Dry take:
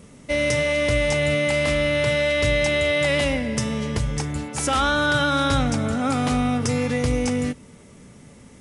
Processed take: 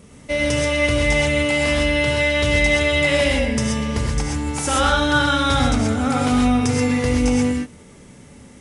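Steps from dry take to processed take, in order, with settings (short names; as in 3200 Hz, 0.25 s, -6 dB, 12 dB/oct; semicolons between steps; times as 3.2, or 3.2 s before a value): non-linear reverb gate 0.15 s rising, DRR -0.5 dB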